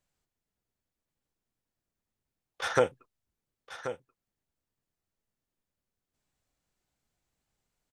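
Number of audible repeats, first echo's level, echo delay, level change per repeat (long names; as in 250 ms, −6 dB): 1, −11.5 dB, 1,082 ms, repeats not evenly spaced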